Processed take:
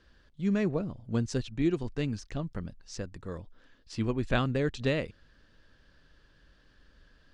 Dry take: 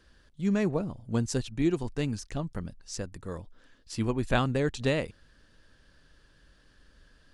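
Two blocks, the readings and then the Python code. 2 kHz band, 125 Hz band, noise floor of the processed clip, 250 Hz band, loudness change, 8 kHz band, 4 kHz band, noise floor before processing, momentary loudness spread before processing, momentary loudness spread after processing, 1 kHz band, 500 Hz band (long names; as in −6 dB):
−1.5 dB, −1.0 dB, −63 dBFS, −1.0 dB, −1.5 dB, −7.0 dB, −2.0 dB, −62 dBFS, 13 LU, 13 LU, −3.5 dB, −1.5 dB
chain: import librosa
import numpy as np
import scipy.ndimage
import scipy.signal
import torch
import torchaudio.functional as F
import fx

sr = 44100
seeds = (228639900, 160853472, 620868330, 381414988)

y = fx.dynamic_eq(x, sr, hz=860.0, q=2.5, threshold_db=-49.0, ratio=4.0, max_db=-5)
y = scipy.signal.sosfilt(scipy.signal.butter(2, 5300.0, 'lowpass', fs=sr, output='sos'), y)
y = y * librosa.db_to_amplitude(-1.0)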